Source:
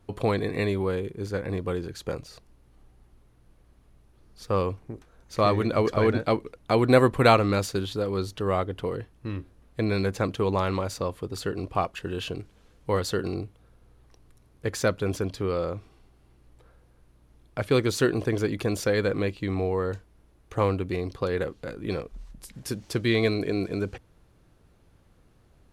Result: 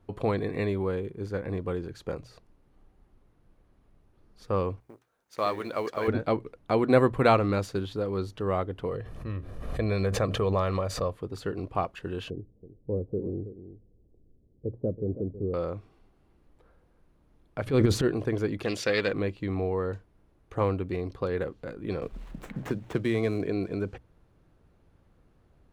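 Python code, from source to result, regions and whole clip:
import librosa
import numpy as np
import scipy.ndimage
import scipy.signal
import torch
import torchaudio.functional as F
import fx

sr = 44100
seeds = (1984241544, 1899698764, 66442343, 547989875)

y = fx.chain(x, sr, fx.law_mismatch(coded='A'),
    fx.highpass(hz=630.0, slope=6),
    fx.high_shelf(hz=6200.0, db=8.5), at=(4.8, 6.08))
y = fx.chain(y, sr, fx.comb(ms=1.7, depth=0.45),
    fx.pre_swell(db_per_s=42.0), at=(8.89, 11.13))
y = fx.chain(y, sr, fx.cheby2_lowpass(hz=2200.0, order=4, stop_db=70),
    fx.echo_single(ms=325, db=-13.0), at=(12.3, 15.54))
y = fx.chain(y, sr, fx.transient(attack_db=-10, sustain_db=9),
    fx.low_shelf(hz=390.0, db=7.0), at=(17.66, 18.08))
y = fx.chain(y, sr, fx.weighting(curve='D'),
    fx.doppler_dist(depth_ms=0.13), at=(18.63, 19.13))
y = fx.chain(y, sr, fx.median_filter(points=9),
    fx.band_squash(depth_pct=70), at=(22.02, 23.47))
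y = fx.high_shelf(y, sr, hz=3100.0, db=-10.0)
y = fx.hum_notches(y, sr, base_hz=60, count=2)
y = y * 10.0 ** (-2.0 / 20.0)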